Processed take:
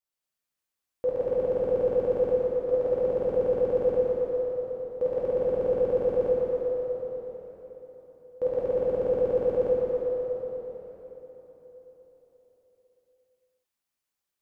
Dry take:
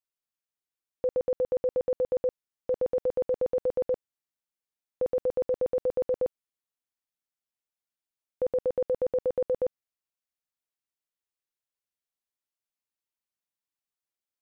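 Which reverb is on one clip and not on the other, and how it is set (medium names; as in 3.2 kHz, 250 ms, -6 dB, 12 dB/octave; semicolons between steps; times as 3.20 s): plate-style reverb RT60 4.3 s, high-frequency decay 0.85×, DRR -9 dB; trim -2.5 dB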